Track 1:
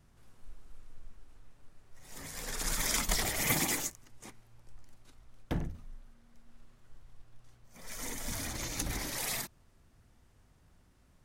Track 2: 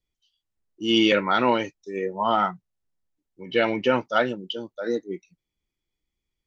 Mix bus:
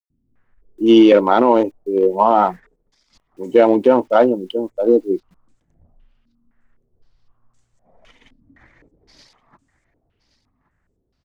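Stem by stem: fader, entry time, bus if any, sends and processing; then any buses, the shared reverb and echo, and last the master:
-11.5 dB, 0.10 s, no send, echo send -16 dB, negative-ratio compressor -41 dBFS, ratio -0.5; stepped low-pass 3.9 Hz 270–7600 Hz
+1.0 dB, 0.00 s, no send, no echo send, Wiener smoothing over 25 samples; band shelf 500 Hz +13 dB 2.5 oct; bit-crush 10-bit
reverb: off
echo: echo 1.121 s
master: limiter -2 dBFS, peak gain reduction 7 dB

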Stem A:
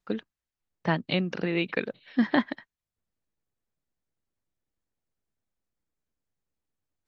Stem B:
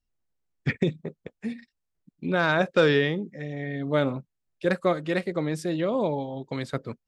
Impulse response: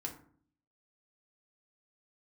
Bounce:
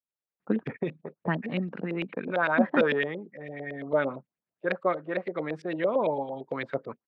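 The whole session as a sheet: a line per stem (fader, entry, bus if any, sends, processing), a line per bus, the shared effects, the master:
+2.0 dB, 0.40 s, no send, bell 210 Hz +7.5 dB 1.4 oct; auto duck -11 dB, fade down 1.55 s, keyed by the second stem
-12.5 dB, 0.00 s, no send, low shelf 260 Hz -10.5 dB; AGC gain up to 12.5 dB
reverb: off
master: HPF 110 Hz; LFO low-pass saw up 8.9 Hz 490–3000 Hz

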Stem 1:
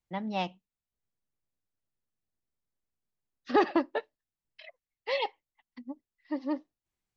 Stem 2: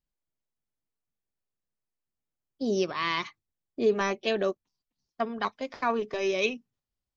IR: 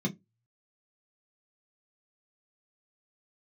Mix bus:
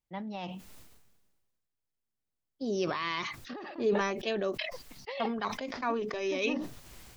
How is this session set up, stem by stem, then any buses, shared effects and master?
-8.0 dB, 0.00 s, no send, negative-ratio compressor -32 dBFS, ratio -1
-5.0 dB, 0.00 s, no send, dry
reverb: off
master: sustainer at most 38 dB/s

